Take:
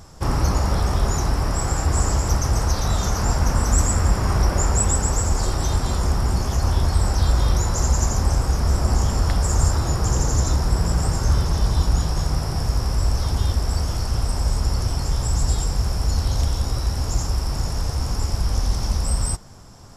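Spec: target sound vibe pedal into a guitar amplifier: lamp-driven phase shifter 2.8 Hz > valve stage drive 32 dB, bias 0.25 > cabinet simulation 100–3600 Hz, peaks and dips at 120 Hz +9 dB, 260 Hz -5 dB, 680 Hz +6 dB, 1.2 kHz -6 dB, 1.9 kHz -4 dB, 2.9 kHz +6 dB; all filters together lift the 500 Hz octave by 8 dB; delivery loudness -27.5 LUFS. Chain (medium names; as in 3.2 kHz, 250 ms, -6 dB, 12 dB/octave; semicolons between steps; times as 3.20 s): peaking EQ 500 Hz +8 dB; lamp-driven phase shifter 2.8 Hz; valve stage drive 32 dB, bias 0.25; cabinet simulation 100–3600 Hz, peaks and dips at 120 Hz +9 dB, 260 Hz -5 dB, 680 Hz +6 dB, 1.2 kHz -6 dB, 1.9 kHz -4 dB, 2.9 kHz +6 dB; trim +9 dB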